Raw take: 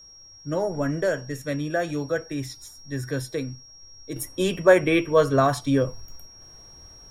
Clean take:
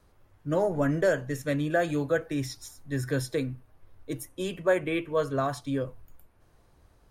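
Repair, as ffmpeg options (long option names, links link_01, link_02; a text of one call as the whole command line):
ffmpeg -i in.wav -af "bandreject=frequency=5600:width=30,asetnsamples=nb_out_samples=441:pad=0,asendcmd='4.16 volume volume -8.5dB',volume=0dB" out.wav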